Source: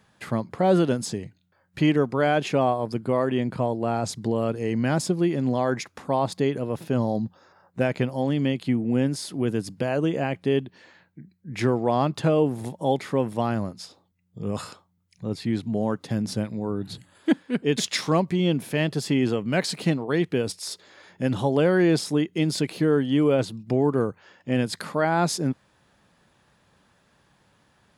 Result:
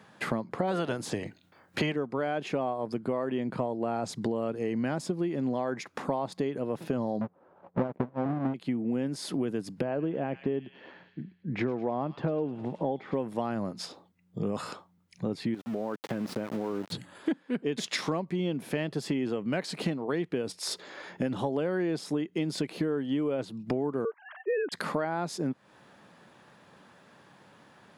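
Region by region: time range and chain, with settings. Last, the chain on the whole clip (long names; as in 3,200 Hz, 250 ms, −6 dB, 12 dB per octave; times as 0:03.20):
0:00.67–0:01.93: ceiling on every frequency bin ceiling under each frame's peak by 15 dB + parametric band 98 Hz +7 dB 1.1 octaves
0:07.21–0:08.54: each half-wave held at its own peak + low-pass filter 1,000 Hz + transient designer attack +8 dB, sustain −11 dB
0:09.81–0:13.15: head-to-tape spacing loss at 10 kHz 32 dB + delay with a high-pass on its return 104 ms, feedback 55%, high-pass 3,000 Hz, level −3 dB
0:15.54–0:16.92: bass and treble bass −8 dB, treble −13 dB + centre clipping without the shift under −40 dBFS + downward compressor, threshold −31 dBFS
0:24.05–0:24.72: three sine waves on the formant tracks + parametric band 2,400 Hz −8 dB 0.27 octaves
whole clip: high-pass filter 170 Hz 12 dB per octave; high-shelf EQ 3,400 Hz −8.5 dB; downward compressor 6 to 1, threshold −36 dBFS; level +8 dB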